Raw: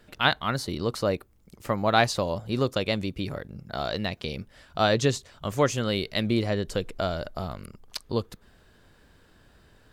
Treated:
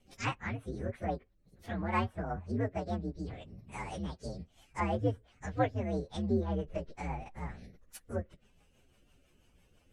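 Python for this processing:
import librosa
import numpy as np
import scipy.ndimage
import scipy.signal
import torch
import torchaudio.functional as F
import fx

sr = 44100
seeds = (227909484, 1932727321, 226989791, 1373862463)

y = fx.partial_stretch(x, sr, pct=129)
y = fx.rotary(y, sr, hz=6.0)
y = fx.env_lowpass_down(y, sr, base_hz=2000.0, full_db=-29.0)
y = y * 10.0 ** (-3.0 / 20.0)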